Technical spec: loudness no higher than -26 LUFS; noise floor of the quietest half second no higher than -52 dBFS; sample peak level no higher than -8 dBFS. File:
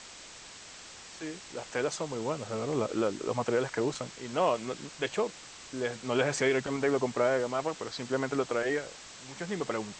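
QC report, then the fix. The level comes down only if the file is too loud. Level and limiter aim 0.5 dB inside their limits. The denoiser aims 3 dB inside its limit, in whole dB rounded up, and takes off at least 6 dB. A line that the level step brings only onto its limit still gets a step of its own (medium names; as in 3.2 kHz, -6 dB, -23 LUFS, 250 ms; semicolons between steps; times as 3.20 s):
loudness -31.5 LUFS: pass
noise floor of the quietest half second -48 dBFS: fail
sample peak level -15.0 dBFS: pass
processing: noise reduction 7 dB, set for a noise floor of -48 dBFS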